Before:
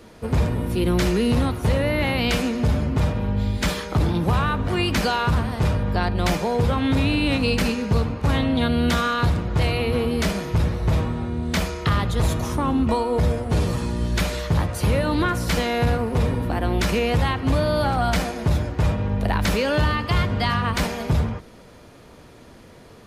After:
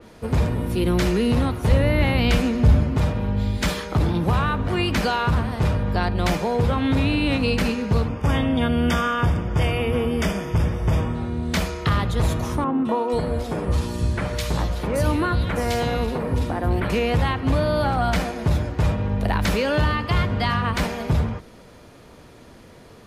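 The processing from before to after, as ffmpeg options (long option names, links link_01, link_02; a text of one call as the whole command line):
ffmpeg -i in.wav -filter_complex "[0:a]asettb=1/sr,asplit=3[link_01][link_02][link_03];[link_01]atrim=end=1.714[link_04];[link_02]atrim=start=1.71:end=2.83,asetpts=PTS-STARTPTS,afade=type=in:duration=0.004:curve=qsin,afade=type=out:start_time=1.116:duration=0.004:curve=qsin,lowshelf=frequency=130:gain=9[link_05];[link_03]atrim=start=2.826[link_06];[link_04][link_05]acrossfade=duration=0.004:curve1=hsin:curve2=qsin[link_07];[link_07][link_06]acrossfade=duration=0.004:curve1=qsin:curve2=hsin,asettb=1/sr,asplit=3[link_08][link_09][link_10];[link_08]atrim=end=8.084[link_11];[link_09]atrim=start=8.08:end=11.15,asetpts=PTS-STARTPTS,afade=type=in:duration=0.004:curve=qsin,afade=type=out:start_time=3.066:duration=0.004:curve=qsin,asuperstop=centerf=4100:order=12:qfactor=4.8[link_12];[link_10]atrim=start=11.146[link_13];[link_11][link_12]acrossfade=duration=0.004:curve1=hsin:curve2=qsin[link_14];[link_14][link_13]acrossfade=duration=0.004:curve1=qsin:curve2=hsin,asettb=1/sr,asplit=3[link_15][link_16][link_17];[link_15]atrim=end=12.644[link_18];[link_16]atrim=start=12.64:end=16.9,asetpts=PTS-STARTPTS,afade=type=in:duration=0.004:curve=qsin,afade=type=out:start_time=4.256:duration=0.004:curve=qsin,acrossover=split=150|2300[link_19][link_20][link_21];[link_21]adelay=210[link_22];[link_19]adelay=490[link_23];[link_23][link_20][link_22]amix=inputs=3:normalize=0,atrim=end_sample=187866[link_24];[link_17]atrim=start=16.896[link_25];[link_18][link_24]acrossfade=duration=0.004:curve1=hsin:curve2=qsin[link_26];[link_26][link_25]acrossfade=duration=0.004:curve1=qsin:curve2=hsin,adynamicequalizer=threshold=0.0112:dfrequency=3600:dqfactor=0.7:tfrequency=3600:tqfactor=0.7:attack=5:release=100:ratio=0.375:range=2:mode=cutabove:tftype=highshelf" out.wav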